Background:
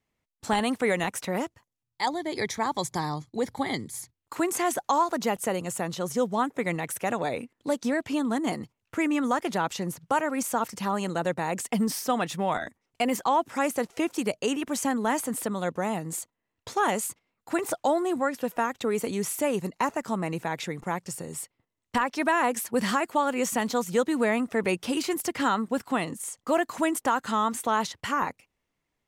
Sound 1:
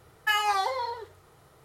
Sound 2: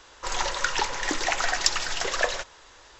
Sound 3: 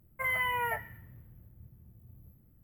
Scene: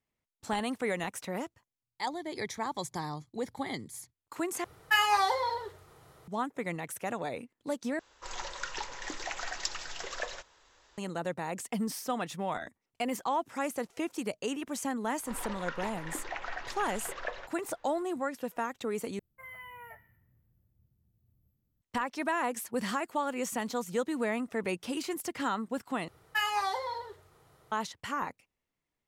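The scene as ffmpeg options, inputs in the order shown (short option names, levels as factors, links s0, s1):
-filter_complex "[1:a]asplit=2[s0][s1];[2:a]asplit=2[s2][s3];[0:a]volume=0.447[s4];[s3]lowpass=2500[s5];[s4]asplit=5[s6][s7][s8][s9][s10];[s6]atrim=end=4.644[s11];[s0]atrim=end=1.64[s12];[s7]atrim=start=6.276:end=7.994[s13];[s2]atrim=end=2.99,asetpts=PTS-STARTPTS,volume=0.251[s14];[s8]atrim=start=10.976:end=19.194[s15];[3:a]atrim=end=2.63,asetpts=PTS-STARTPTS,volume=0.15[s16];[s9]atrim=start=21.816:end=26.084[s17];[s1]atrim=end=1.64,asetpts=PTS-STARTPTS,volume=0.562[s18];[s10]atrim=start=27.716[s19];[s5]atrim=end=2.99,asetpts=PTS-STARTPTS,volume=0.266,afade=t=in:d=0.004:c=hsin,afade=t=out:st=2.986:d=0.004:c=hsin,adelay=15040[s20];[s11][s12]acrossfade=d=0.004:c1=hsin:c2=hsin[s21];[s21][s13]acrossfade=d=0.004:c1=hsin:c2=hsin[s22];[s22][s14]acrossfade=d=0.004:c1=hsin:c2=hsin[s23];[s23][s15]acrossfade=d=0.004:c1=hsin:c2=hsin[s24];[s24][s16]acrossfade=d=0.004:c1=hsin:c2=hsin[s25];[s25][s17]acrossfade=d=0.004:c1=hsin:c2=hsin[s26];[s26][s18]acrossfade=d=0.004:c1=hsin:c2=hsin[s27];[s27][s19]acrossfade=d=0.004:c1=hsin:c2=hsin[s28];[s28][s20]amix=inputs=2:normalize=0"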